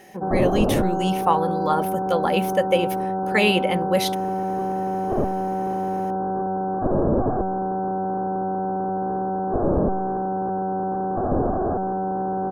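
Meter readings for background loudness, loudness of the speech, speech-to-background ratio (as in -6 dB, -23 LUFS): -24.5 LUFS, -23.5 LUFS, 1.0 dB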